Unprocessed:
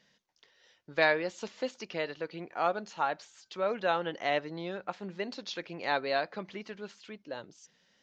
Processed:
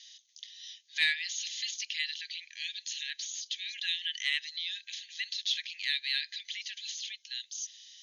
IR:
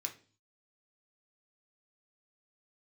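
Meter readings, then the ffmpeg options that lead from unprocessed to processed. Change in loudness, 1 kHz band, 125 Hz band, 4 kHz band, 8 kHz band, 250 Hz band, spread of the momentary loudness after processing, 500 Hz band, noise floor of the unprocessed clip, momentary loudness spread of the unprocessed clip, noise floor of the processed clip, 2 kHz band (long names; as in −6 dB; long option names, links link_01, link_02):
0.0 dB, below −35 dB, below −30 dB, +11.0 dB, can't be measured, below −35 dB, 12 LU, below −40 dB, −71 dBFS, 15 LU, −64 dBFS, 0.0 dB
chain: -filter_complex "[0:a]acrossover=split=2600[link_01][link_02];[link_02]acompressor=threshold=-55dB:ratio=4:attack=1:release=60[link_03];[link_01][link_03]amix=inputs=2:normalize=0,aexciter=amount=15.5:drive=1:freq=2500,afftfilt=real='re*between(b*sr/4096,1600,6900)':imag='im*between(b*sr/4096,1600,6900)':win_size=4096:overlap=0.75,asplit=2[link_04][link_05];[link_05]asoftclip=type=tanh:threshold=-18dB,volume=-8dB[link_06];[link_04][link_06]amix=inputs=2:normalize=0,superequalizer=12b=0.562:14b=0.562,volume=-2.5dB"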